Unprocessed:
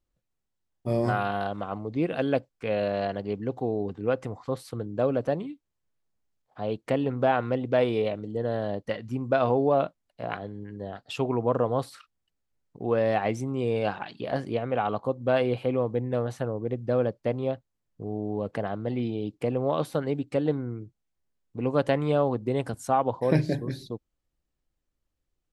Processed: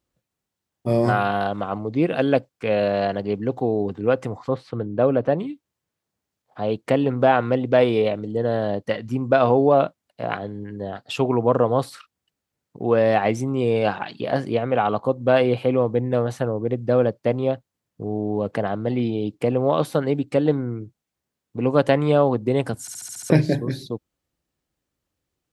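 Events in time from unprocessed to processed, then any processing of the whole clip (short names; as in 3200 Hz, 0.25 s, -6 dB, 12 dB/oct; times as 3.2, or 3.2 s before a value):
4.48–5.39 LPF 3000 Hz
22.81 stutter in place 0.07 s, 7 plays
whole clip: HPF 85 Hz; gain +6.5 dB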